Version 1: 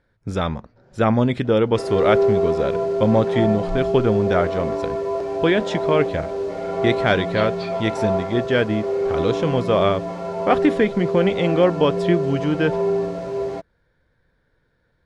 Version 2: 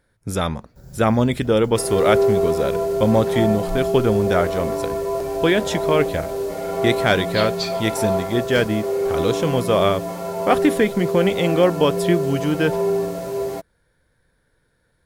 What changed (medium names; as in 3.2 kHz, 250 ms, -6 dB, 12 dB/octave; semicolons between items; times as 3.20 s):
first sound: remove band-pass 350–3000 Hz; master: remove distance through air 130 m